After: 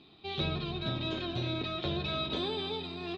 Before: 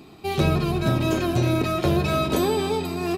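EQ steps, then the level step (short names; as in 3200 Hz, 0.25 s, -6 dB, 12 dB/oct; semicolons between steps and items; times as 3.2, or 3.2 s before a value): ladder low-pass 3900 Hz, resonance 75%; -1.5 dB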